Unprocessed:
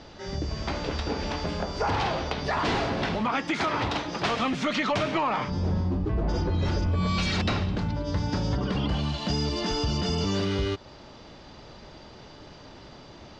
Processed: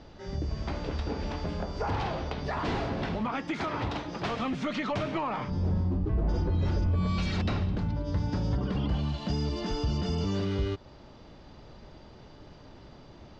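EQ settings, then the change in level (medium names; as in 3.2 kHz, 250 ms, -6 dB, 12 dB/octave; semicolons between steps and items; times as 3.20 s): tilt EQ -1.5 dB/octave; -6.0 dB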